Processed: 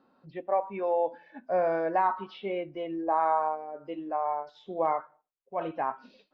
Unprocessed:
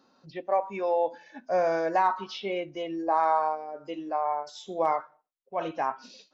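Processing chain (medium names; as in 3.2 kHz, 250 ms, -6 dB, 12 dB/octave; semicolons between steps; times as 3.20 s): distance through air 400 m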